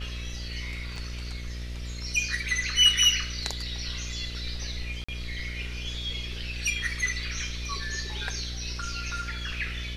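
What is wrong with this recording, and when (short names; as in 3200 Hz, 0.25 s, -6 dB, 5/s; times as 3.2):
buzz 60 Hz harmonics 11 -36 dBFS
0.96 gap 3.1 ms
5.04–5.08 gap 45 ms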